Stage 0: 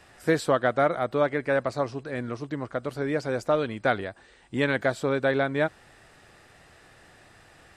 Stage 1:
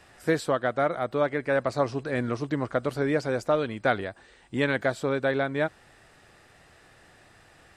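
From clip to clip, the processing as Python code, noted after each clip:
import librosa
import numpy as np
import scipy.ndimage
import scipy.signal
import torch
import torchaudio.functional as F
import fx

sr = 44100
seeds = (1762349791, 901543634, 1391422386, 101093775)

y = fx.rider(x, sr, range_db=4, speed_s=0.5)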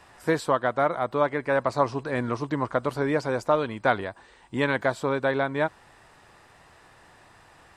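y = fx.peak_eq(x, sr, hz=980.0, db=10.0, octaves=0.45)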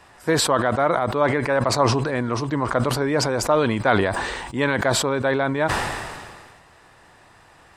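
y = fx.sustainer(x, sr, db_per_s=33.0)
y = y * librosa.db_to_amplitude(2.5)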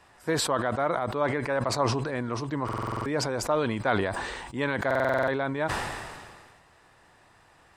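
y = fx.buffer_glitch(x, sr, at_s=(2.64, 4.86), block=2048, repeats=8)
y = y * librosa.db_to_amplitude(-7.0)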